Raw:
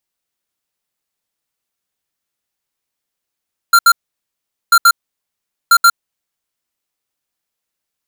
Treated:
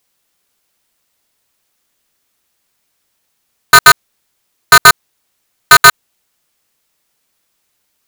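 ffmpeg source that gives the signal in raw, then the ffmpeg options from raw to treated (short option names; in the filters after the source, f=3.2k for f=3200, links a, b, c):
-f lavfi -i "aevalsrc='0.447*(2*lt(mod(1380*t,1),0.5)-1)*clip(min(mod(mod(t,0.99),0.13),0.06-mod(mod(t,0.99),0.13))/0.005,0,1)*lt(mod(t,0.99),0.26)':d=2.97:s=44100"
-af "alimiter=level_in=14dB:limit=-1dB:release=50:level=0:latency=1,aeval=exprs='val(0)*sgn(sin(2*PI*140*n/s))':c=same"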